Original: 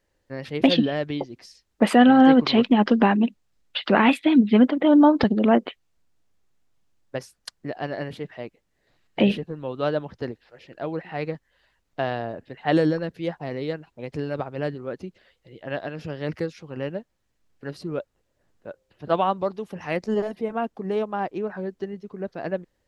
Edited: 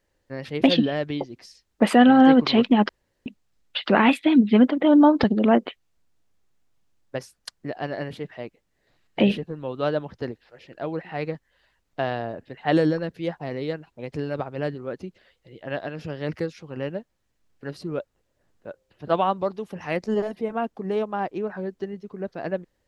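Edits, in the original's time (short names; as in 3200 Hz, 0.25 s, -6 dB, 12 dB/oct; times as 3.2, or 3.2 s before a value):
2.89–3.26 room tone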